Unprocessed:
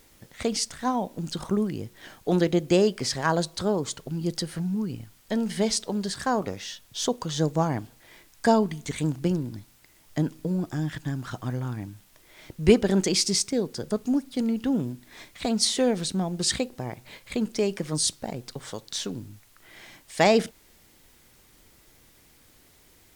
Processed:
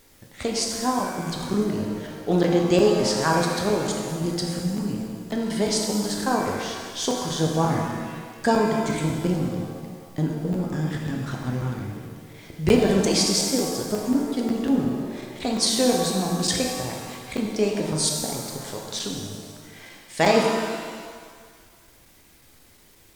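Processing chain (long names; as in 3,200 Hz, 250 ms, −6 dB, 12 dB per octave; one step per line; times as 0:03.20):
regular buffer underruns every 0.18 s, samples 512, zero, from 0:00.99
reverb with rising layers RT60 1.7 s, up +7 semitones, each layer −8 dB, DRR 0 dB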